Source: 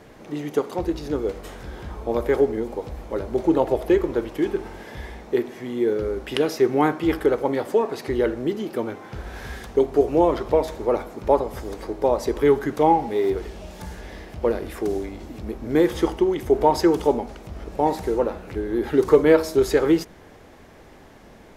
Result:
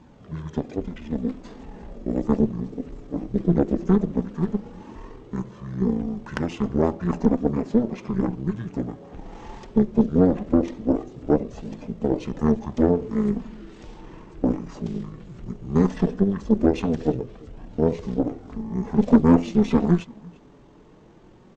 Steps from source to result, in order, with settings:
flanger 0.17 Hz, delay 0.6 ms, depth 3.2 ms, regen −46%
single-tap delay 341 ms −22.5 dB
harmonic generator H 3 −39 dB, 6 −16 dB, 7 −44 dB, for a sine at −6 dBFS
parametric band 730 Hz +4.5 dB 1.6 octaves
pitch shifter −11 semitones

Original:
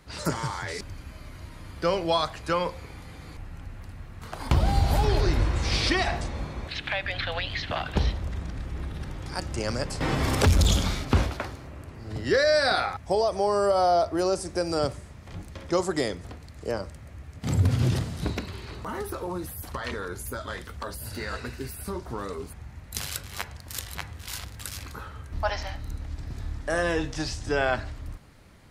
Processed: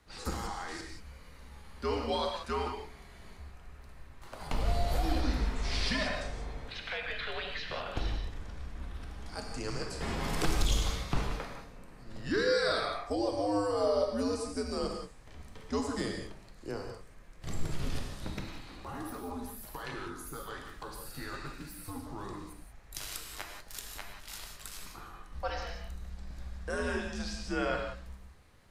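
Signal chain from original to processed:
frequency shifter −100 Hz
reverb whose tail is shaped and stops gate 210 ms flat, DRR 1.5 dB
level −9 dB

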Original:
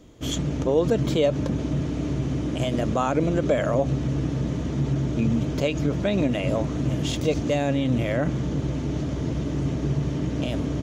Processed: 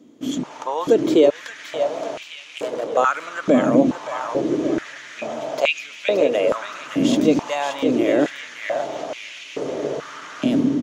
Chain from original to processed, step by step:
automatic gain control gain up to 7.5 dB
0:02.23–0:02.97: tube saturation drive 23 dB, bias 0.55
repeating echo 572 ms, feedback 48%, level −7.5 dB
high-pass on a step sequencer 2.3 Hz 250–2,500 Hz
level −4.5 dB

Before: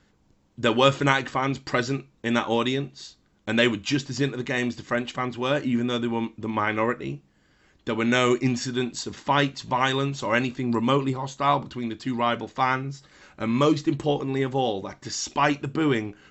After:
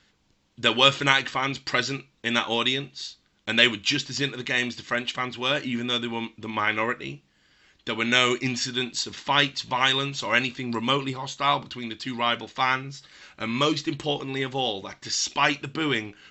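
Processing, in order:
parametric band 3,500 Hz +13 dB 2.5 octaves
level −5.5 dB

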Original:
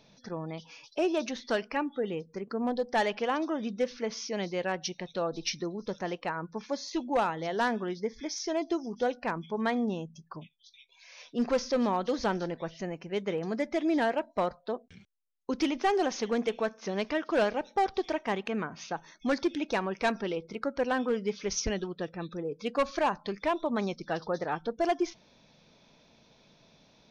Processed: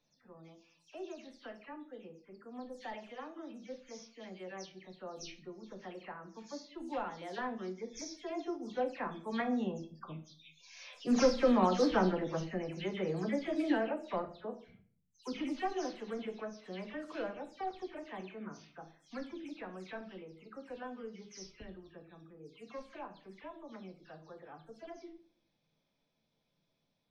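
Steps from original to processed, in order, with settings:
every frequency bin delayed by itself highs early, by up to 174 ms
source passing by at 0:11.51, 9 m/s, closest 11 metres
rectangular room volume 45 cubic metres, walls mixed, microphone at 0.32 metres

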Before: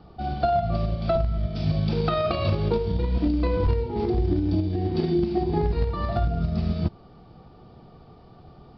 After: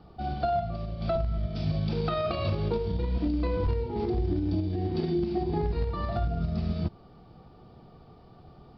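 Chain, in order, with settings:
in parallel at −2.5 dB: brickwall limiter −19.5 dBFS, peak gain reduction 8 dB
0:00.61–0:01.01: on the sum: downward compressor, threshold −22 dBFS, peak gain reduction 6 dB
level −8 dB

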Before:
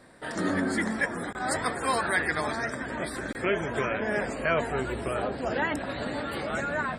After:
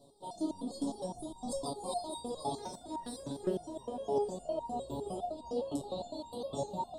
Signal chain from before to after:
0:01.14–0:01.64: sub-octave generator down 1 octave, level +2 dB
elliptic band-stop filter 910–3,600 Hz, stop band 50 dB
in parallel at +2.5 dB: speech leveller within 3 dB 0.5 s
0:02.57–0:03.48: on the sum: hard clipping −20.5 dBFS, distortion −25 dB
on a send: feedback delay with all-pass diffusion 457 ms, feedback 63%, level −13.5 dB
on the sum: step-sequenced resonator 9.8 Hz 140–930 Hz

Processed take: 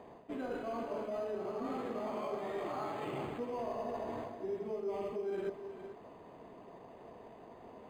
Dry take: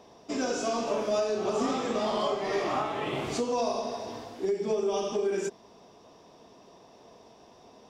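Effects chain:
high-pass filter 60 Hz
high-shelf EQ 6,500 Hz −11 dB
reversed playback
downward compressor 6 to 1, threshold −38 dBFS, peak gain reduction 13.5 dB
reversed playback
reverb whose tail is shaped and stops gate 480 ms rising, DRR 10.5 dB
linearly interpolated sample-rate reduction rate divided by 8×
level +1.5 dB

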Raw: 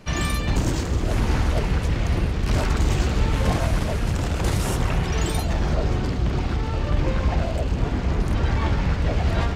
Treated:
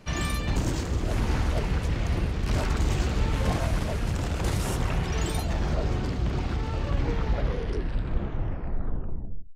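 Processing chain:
turntable brake at the end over 2.74 s
level −4.5 dB

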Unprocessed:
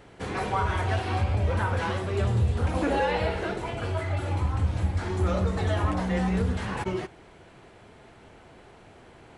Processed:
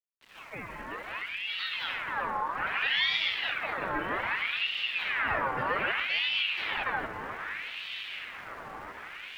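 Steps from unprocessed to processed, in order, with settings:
fade in at the beginning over 3.09 s
low-pass filter 1,300 Hz 12 dB per octave
low-shelf EQ 200 Hz −10 dB
in parallel at −1.5 dB: downward compressor, threshold −34 dBFS, peak gain reduction 10.5 dB
on the sum: centre clipping without the shift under −49.5 dBFS
on a send: feedback delay with all-pass diffusion 1,196 ms, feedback 57%, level −9 dB
on the sum: ring modulator whose carrier an LFO sweeps 1,900 Hz, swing 50%, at 0.63 Hz

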